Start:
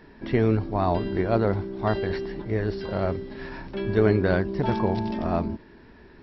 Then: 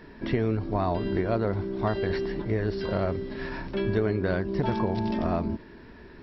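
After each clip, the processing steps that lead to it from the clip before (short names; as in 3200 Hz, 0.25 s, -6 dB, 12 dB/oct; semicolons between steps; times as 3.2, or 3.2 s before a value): notch 810 Hz, Q 14; compressor 5:1, threshold -25 dBFS, peak gain reduction 9.5 dB; gain +2.5 dB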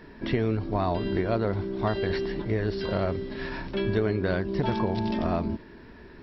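dynamic EQ 3500 Hz, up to +4 dB, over -52 dBFS, Q 1.2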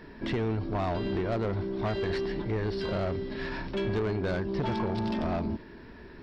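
soft clip -24 dBFS, distortion -12 dB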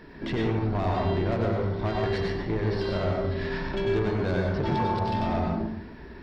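plate-style reverb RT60 0.72 s, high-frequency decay 0.5×, pre-delay 85 ms, DRR -1 dB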